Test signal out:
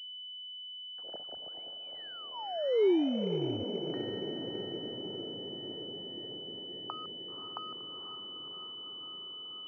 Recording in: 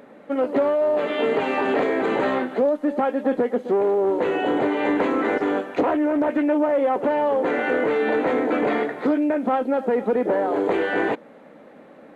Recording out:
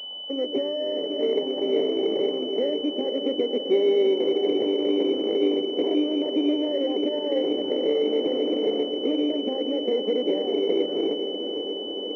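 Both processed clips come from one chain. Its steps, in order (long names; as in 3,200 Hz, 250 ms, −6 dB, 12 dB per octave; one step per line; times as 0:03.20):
running median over 41 samples
in parallel at −1.5 dB: downward compressor, threshold −34 dBFS
on the sum: envelope filter 390–1,100 Hz, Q 2.6, down, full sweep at −27 dBFS
feedback delay with all-pass diffusion 522 ms, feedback 76%, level −8 dB
switching amplifier with a slow clock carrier 3,000 Hz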